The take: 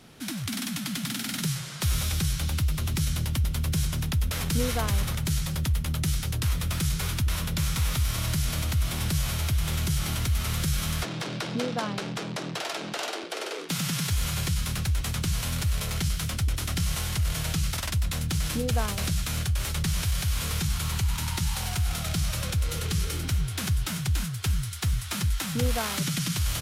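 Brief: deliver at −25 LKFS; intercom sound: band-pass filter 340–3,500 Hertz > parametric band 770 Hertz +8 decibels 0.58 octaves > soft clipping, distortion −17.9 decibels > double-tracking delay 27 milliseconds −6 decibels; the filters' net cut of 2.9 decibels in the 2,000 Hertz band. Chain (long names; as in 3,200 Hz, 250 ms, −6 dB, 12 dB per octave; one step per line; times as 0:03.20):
band-pass filter 340–3,500 Hz
parametric band 770 Hz +8 dB 0.58 octaves
parametric band 2,000 Hz −3.5 dB
soft clipping −22.5 dBFS
double-tracking delay 27 ms −6 dB
level +11 dB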